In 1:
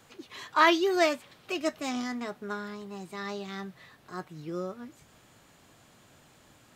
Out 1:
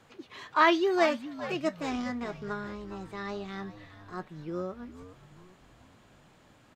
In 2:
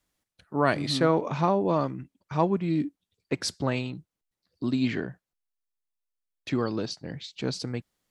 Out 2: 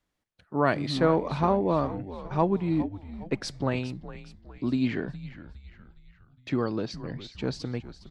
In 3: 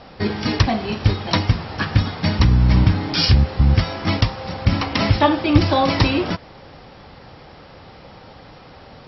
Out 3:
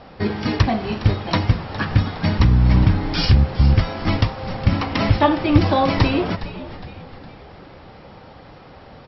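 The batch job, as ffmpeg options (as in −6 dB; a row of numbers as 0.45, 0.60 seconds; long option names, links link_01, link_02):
-filter_complex "[0:a]lowpass=frequency=2900:poles=1,asplit=6[link_01][link_02][link_03][link_04][link_05][link_06];[link_02]adelay=412,afreqshift=-96,volume=-14dB[link_07];[link_03]adelay=824,afreqshift=-192,volume=-20.4dB[link_08];[link_04]adelay=1236,afreqshift=-288,volume=-26.8dB[link_09];[link_05]adelay=1648,afreqshift=-384,volume=-33.1dB[link_10];[link_06]adelay=2060,afreqshift=-480,volume=-39.5dB[link_11];[link_01][link_07][link_08][link_09][link_10][link_11]amix=inputs=6:normalize=0"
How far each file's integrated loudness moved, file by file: −0.5, −0.5, −0.5 LU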